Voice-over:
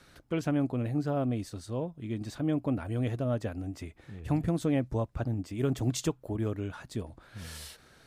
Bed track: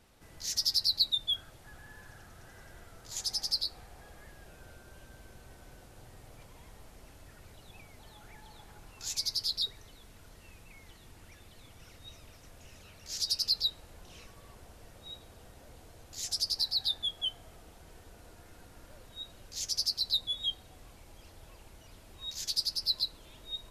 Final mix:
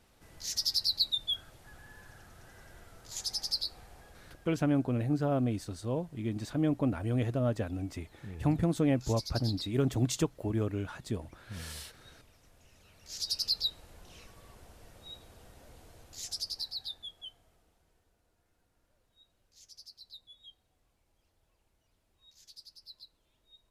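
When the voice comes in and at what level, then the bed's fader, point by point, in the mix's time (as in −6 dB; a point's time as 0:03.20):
4.15 s, +0.5 dB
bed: 0:03.95 −1.5 dB
0:04.65 −8.5 dB
0:12.74 −8.5 dB
0:13.39 −1.5 dB
0:15.98 −1.5 dB
0:18.22 −21 dB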